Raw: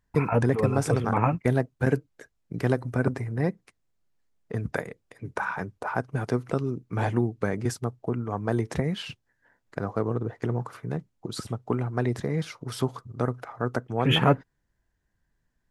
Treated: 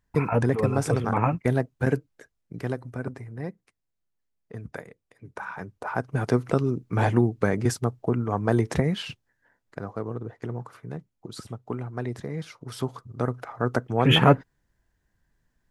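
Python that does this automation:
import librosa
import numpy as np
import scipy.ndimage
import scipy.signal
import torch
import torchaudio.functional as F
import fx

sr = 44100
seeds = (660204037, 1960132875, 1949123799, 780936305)

y = fx.gain(x, sr, db=fx.line((1.9, 0.0), (3.05, -8.0), (5.3, -8.0), (6.3, 4.0), (8.76, 4.0), (9.92, -5.0), (12.43, -5.0), (13.78, 3.5)))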